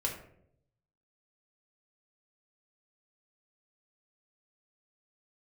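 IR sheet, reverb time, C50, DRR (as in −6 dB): 0.70 s, 6.5 dB, −0.5 dB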